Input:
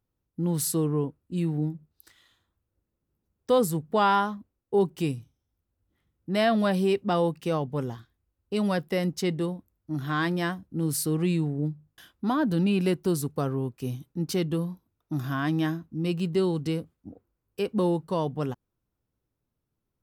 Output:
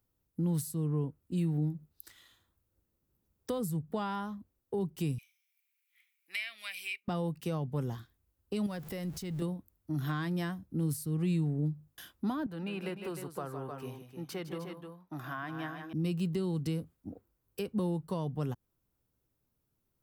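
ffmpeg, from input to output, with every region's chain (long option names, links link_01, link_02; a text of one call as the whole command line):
ffmpeg -i in.wav -filter_complex "[0:a]asettb=1/sr,asplit=3[link_01][link_02][link_03];[link_01]atrim=end=5.184[link_04];[link_02]atrim=start=5.18:end=7.08,asetpts=PTS-STARTPTS,afade=type=in:duration=0.004:curve=qsin,afade=type=out:start_time=1.896:duration=0.004:curve=qsin,highpass=frequency=2300:width_type=q:width=12,highshelf=frequency=6200:gain=4.5[link_05];[link_03]atrim=start=7.076[link_06];[link_04][link_05]acrossfade=duration=0.004:curve1=hsin:curve2=qsin[link_07];[link_07][link_06]acrossfade=duration=0.004:curve1=qsin:curve2=hsin,asettb=1/sr,asplit=3[link_08][link_09][link_10];[link_08]atrim=end=8.664[link_11];[link_09]atrim=start=8.66:end=9.42,asetpts=PTS-STARTPTS,afade=type=in:duration=0.004:curve=qsin,afade=type=out:start_time=0.756:duration=0.004:curve=qsin,aeval=exprs='val(0)+0.5*0.0075*sgn(val(0))':channel_layout=same,asubboost=boost=10:cutoff=150,acompressor=threshold=-35dB:ratio=2.5:attack=3.2:release=140:knee=1:detection=peak[link_12];[link_10]atrim=start=9.416[link_13];[link_11][link_12]acrossfade=duration=0.004:curve1=hsin:curve2=qsin[link_14];[link_14][link_13]acrossfade=duration=0.004:curve1=qsin:curve2=hsin,asettb=1/sr,asplit=3[link_15][link_16][link_17];[link_15]atrim=end=12.464[link_18];[link_16]atrim=start=12.46:end=15.93,asetpts=PTS-STARTPTS,afade=type=in:duration=0.004:curve=qsin,afade=type=out:start_time=3.466:duration=0.004:curve=qsin,acrossover=split=520 2600:gain=0.2 1 0.178[link_19][link_20][link_21];[link_19][link_20][link_21]amix=inputs=3:normalize=0,aecho=1:1:156|305:0.299|0.316,atrim=end_sample=153027[link_22];[link_17]atrim=start=15.926[link_23];[link_18][link_22]acrossfade=duration=0.004:curve1=hsin:curve2=qsin[link_24];[link_24][link_23]acrossfade=duration=0.004:curve1=qsin:curve2=hsin,aemphasis=mode=production:type=75kf,acrossover=split=170[link_25][link_26];[link_26]acompressor=threshold=-36dB:ratio=4[link_27];[link_25][link_27]amix=inputs=2:normalize=0,highshelf=frequency=3500:gain=-9" out.wav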